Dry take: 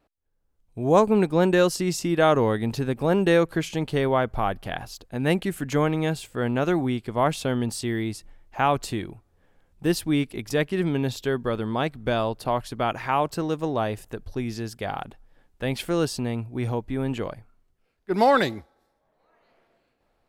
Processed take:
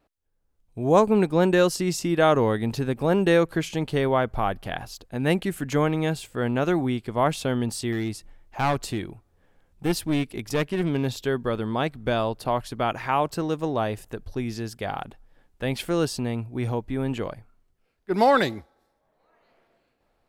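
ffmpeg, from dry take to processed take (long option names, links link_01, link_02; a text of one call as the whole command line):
ffmpeg -i in.wav -filter_complex "[0:a]asettb=1/sr,asplit=3[link_01][link_02][link_03];[link_01]atrim=end=7.924[link_04];[link_02]atrim=start=7.92:end=11.11,asetpts=PTS-STARTPTS,afade=type=in:duration=0.004:curve=qsin,afade=type=out:start_time=3.186:duration=0.004:curve=qsin,aeval=exprs='clip(val(0),-1,0.0631)':channel_layout=same[link_05];[link_03]atrim=start=11.106[link_06];[link_04][link_05]acrossfade=duration=0.004:curve1=hsin:curve2=qsin[link_07];[link_07][link_06]acrossfade=duration=0.004:curve1=qsin:curve2=hsin" out.wav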